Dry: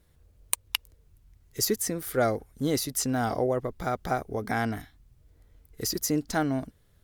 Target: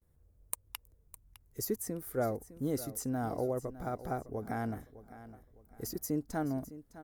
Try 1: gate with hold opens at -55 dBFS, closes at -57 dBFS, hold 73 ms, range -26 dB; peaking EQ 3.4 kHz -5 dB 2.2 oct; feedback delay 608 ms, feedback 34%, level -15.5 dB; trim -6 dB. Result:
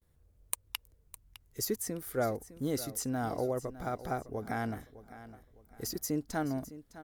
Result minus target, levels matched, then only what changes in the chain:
4 kHz band +6.0 dB
change: peaking EQ 3.4 kHz -14 dB 2.2 oct

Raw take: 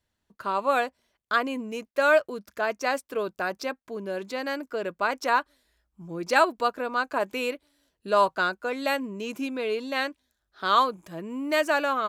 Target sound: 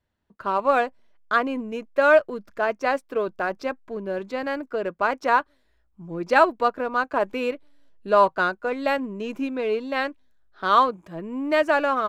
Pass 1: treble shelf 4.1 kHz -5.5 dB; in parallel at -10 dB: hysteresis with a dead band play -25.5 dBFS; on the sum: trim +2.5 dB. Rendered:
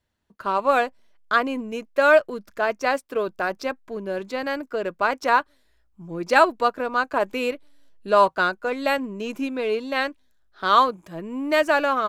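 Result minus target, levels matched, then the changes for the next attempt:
8 kHz band +6.0 dB
change: treble shelf 4.1 kHz -16 dB

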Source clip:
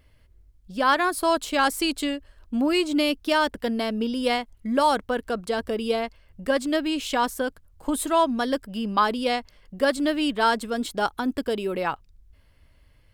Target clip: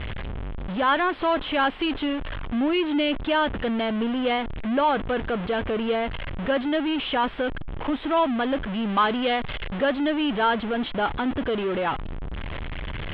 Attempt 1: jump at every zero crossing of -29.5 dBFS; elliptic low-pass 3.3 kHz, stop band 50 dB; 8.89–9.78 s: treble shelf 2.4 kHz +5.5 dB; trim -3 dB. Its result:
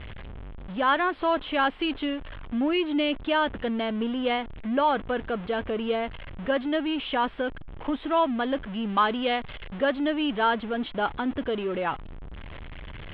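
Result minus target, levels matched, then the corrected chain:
jump at every zero crossing: distortion -6 dB
jump at every zero crossing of -21 dBFS; elliptic low-pass 3.3 kHz, stop band 50 dB; 8.89–9.78 s: treble shelf 2.4 kHz +5.5 dB; trim -3 dB

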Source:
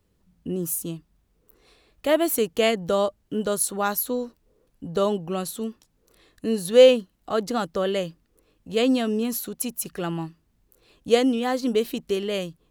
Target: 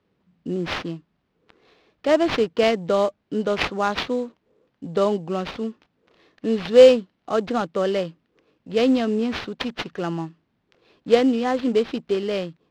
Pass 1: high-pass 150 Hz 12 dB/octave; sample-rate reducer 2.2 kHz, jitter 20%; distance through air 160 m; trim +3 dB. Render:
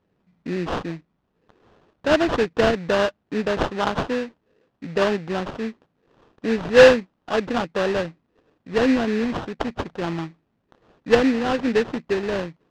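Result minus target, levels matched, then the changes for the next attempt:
sample-rate reducer: distortion +8 dB
change: sample-rate reducer 7.8 kHz, jitter 20%

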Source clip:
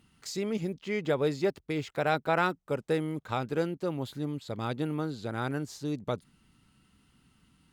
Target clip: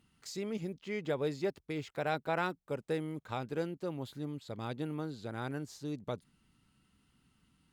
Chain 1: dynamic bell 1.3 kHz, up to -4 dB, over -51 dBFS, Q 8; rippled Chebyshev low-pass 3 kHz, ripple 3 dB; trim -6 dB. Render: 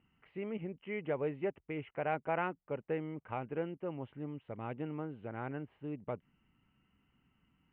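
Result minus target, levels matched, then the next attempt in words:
4 kHz band -10.0 dB
dynamic bell 1.3 kHz, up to -4 dB, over -51 dBFS, Q 8; trim -6 dB

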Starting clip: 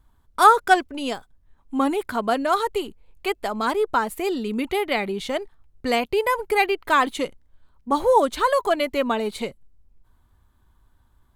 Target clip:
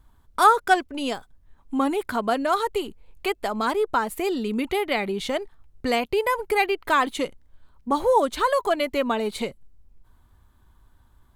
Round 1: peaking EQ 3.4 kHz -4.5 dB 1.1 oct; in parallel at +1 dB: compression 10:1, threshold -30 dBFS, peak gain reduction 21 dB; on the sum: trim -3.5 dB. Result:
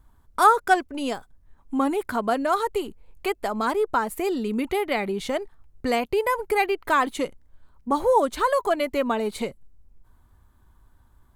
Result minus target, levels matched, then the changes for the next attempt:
4 kHz band -3.5 dB
remove: peaking EQ 3.4 kHz -4.5 dB 1.1 oct

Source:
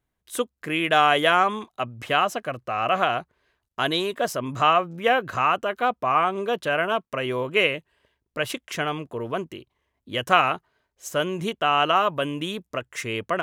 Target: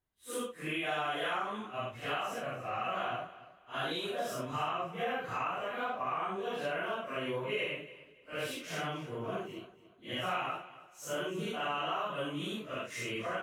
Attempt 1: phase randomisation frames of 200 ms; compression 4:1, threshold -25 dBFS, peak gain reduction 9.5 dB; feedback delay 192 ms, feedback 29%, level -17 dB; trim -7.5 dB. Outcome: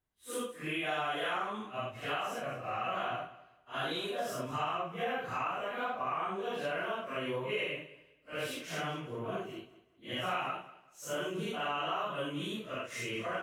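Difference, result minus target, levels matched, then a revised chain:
echo 92 ms early
phase randomisation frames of 200 ms; compression 4:1, threshold -25 dBFS, peak gain reduction 9.5 dB; feedback delay 284 ms, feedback 29%, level -17 dB; trim -7.5 dB

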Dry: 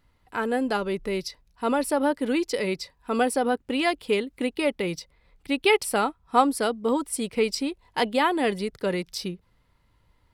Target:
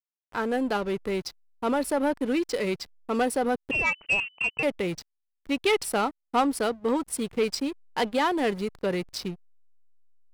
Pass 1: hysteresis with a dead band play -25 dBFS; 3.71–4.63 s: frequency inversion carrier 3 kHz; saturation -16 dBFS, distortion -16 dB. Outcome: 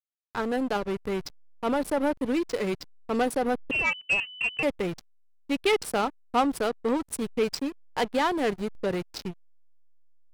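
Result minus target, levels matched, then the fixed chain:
hysteresis with a dead band: distortion +8 dB
hysteresis with a dead band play -33.5 dBFS; 3.71–4.63 s: frequency inversion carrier 3 kHz; saturation -16 dBFS, distortion -16 dB

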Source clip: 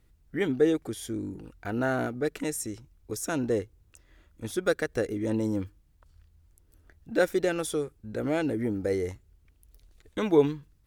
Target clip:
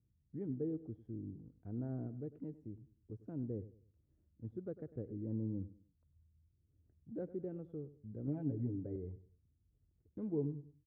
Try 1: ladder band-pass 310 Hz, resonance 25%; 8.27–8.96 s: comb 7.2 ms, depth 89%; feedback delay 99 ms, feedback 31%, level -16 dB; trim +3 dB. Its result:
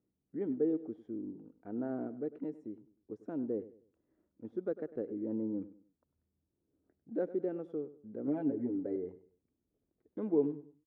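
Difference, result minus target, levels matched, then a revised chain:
125 Hz band -14.5 dB
ladder band-pass 140 Hz, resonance 25%; 8.27–8.96 s: comb 7.2 ms, depth 89%; feedback delay 99 ms, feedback 31%, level -16 dB; trim +3 dB

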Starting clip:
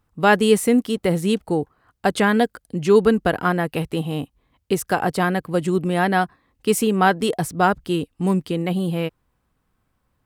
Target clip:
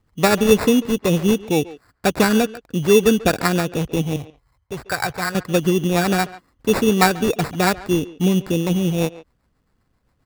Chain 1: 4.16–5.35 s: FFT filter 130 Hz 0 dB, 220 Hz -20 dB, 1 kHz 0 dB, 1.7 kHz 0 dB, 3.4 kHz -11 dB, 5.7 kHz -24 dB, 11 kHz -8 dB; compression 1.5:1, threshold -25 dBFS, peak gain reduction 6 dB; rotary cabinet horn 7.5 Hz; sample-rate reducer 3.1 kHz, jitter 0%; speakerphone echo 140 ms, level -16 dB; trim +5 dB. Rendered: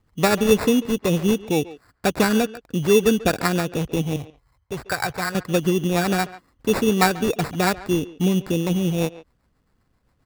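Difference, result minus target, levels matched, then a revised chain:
compression: peak gain reduction +2.5 dB
4.16–5.35 s: FFT filter 130 Hz 0 dB, 220 Hz -20 dB, 1 kHz 0 dB, 1.7 kHz 0 dB, 3.4 kHz -11 dB, 5.7 kHz -24 dB, 11 kHz -8 dB; compression 1.5:1, threshold -17 dBFS, peak gain reduction 3 dB; rotary cabinet horn 7.5 Hz; sample-rate reducer 3.1 kHz, jitter 0%; speakerphone echo 140 ms, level -16 dB; trim +5 dB

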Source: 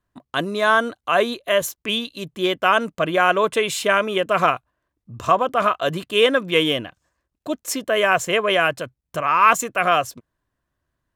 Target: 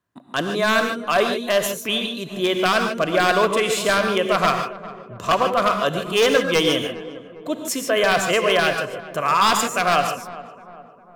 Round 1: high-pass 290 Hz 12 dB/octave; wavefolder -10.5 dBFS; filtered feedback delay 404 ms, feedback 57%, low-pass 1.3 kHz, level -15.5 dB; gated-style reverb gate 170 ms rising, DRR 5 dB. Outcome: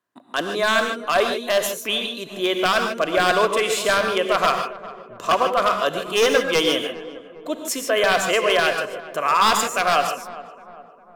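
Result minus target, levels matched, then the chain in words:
125 Hz band -6.5 dB
high-pass 110 Hz 12 dB/octave; wavefolder -10.5 dBFS; filtered feedback delay 404 ms, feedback 57%, low-pass 1.3 kHz, level -15.5 dB; gated-style reverb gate 170 ms rising, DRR 5 dB

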